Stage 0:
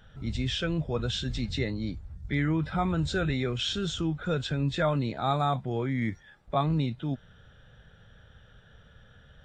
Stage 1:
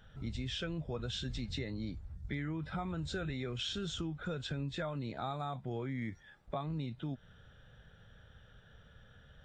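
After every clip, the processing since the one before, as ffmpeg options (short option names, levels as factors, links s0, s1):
-af "acompressor=threshold=0.0282:ratio=6,volume=0.631"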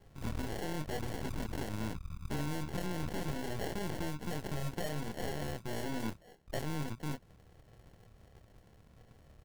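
-filter_complex "[0:a]acrusher=samples=36:mix=1:aa=0.000001,asplit=2[s0][s1];[s1]adelay=27,volume=0.398[s2];[s0][s2]amix=inputs=2:normalize=0,aeval=exprs='0.0531*(cos(1*acos(clip(val(0)/0.0531,-1,1)))-cos(1*PI/2))+0.0119*(cos(8*acos(clip(val(0)/0.0531,-1,1)))-cos(8*PI/2))':c=same,volume=0.841"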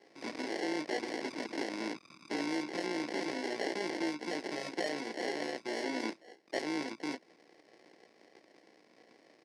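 -af "tremolo=f=57:d=0.462,highpass=f=280:w=0.5412,highpass=f=280:w=1.3066,equalizer=f=320:t=q:w=4:g=6,equalizer=f=1300:t=q:w=4:g=-8,equalizer=f=2100:t=q:w=4:g=8,equalizer=f=3100:t=q:w=4:g=-3,equalizer=f=5000:t=q:w=4:g=8,equalizer=f=7300:t=q:w=4:g=-7,lowpass=f=8200:w=0.5412,lowpass=f=8200:w=1.3066,volume=1.88"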